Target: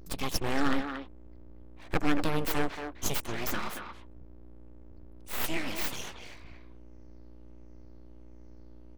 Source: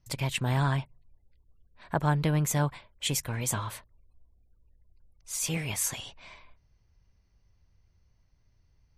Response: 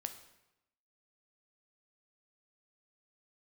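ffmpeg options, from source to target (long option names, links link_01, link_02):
-filter_complex "[0:a]afftfilt=real='re*pow(10,10/40*sin(2*PI*(0.58*log(max(b,1)*sr/1024/100)/log(2)-(-1.4)*(pts-256)/sr)))':imag='im*pow(10,10/40*sin(2*PI*(0.58*log(max(b,1)*sr/1024/100)/log(2)-(-1.4)*(pts-256)/sr)))':win_size=1024:overlap=0.75,aeval=exprs='val(0)+0.00501*(sin(2*PI*60*n/s)+sin(2*PI*2*60*n/s)/2+sin(2*PI*3*60*n/s)/3+sin(2*PI*4*60*n/s)/4+sin(2*PI*5*60*n/s)/5)':channel_layout=same,aeval=exprs='abs(val(0))':channel_layout=same,asplit=2[link_01][link_02];[link_02]adelay=230,highpass=300,lowpass=3400,asoftclip=type=hard:threshold=-22dB,volume=-6dB[link_03];[link_01][link_03]amix=inputs=2:normalize=0"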